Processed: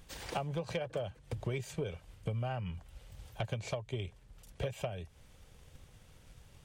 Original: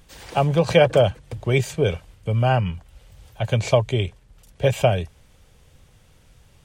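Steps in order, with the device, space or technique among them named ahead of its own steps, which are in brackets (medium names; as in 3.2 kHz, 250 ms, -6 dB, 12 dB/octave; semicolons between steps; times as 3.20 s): drum-bus smash (transient shaper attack +5 dB, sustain 0 dB; compression 10:1, threshold -27 dBFS, peak gain reduction 21.5 dB; saturation -20 dBFS, distortion -18 dB); trim -5 dB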